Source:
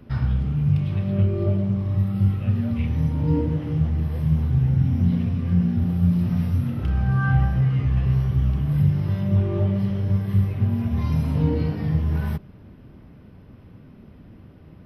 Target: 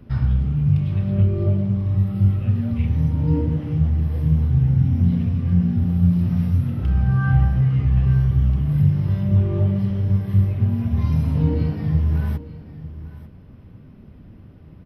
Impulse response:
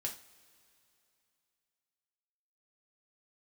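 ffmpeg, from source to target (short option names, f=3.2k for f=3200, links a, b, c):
-filter_complex "[0:a]lowshelf=f=180:g=6.5,asplit=2[a][b];[b]aecho=0:1:894:0.158[c];[a][c]amix=inputs=2:normalize=0,volume=-2dB"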